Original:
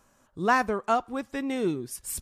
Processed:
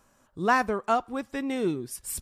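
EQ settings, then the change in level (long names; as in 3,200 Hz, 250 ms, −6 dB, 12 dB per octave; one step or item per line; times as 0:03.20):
notch filter 6,500 Hz, Q 26
0.0 dB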